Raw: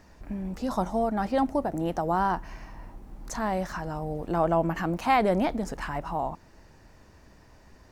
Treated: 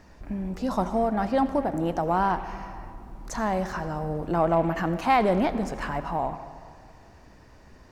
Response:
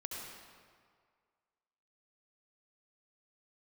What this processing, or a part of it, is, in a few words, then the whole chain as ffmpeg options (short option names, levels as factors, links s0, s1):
saturated reverb return: -filter_complex "[0:a]asplit=2[s0][s1];[1:a]atrim=start_sample=2205[s2];[s1][s2]afir=irnorm=-1:irlink=0,asoftclip=type=tanh:threshold=0.0596,volume=0.531[s3];[s0][s3]amix=inputs=2:normalize=0,highshelf=f=6900:g=-5.5"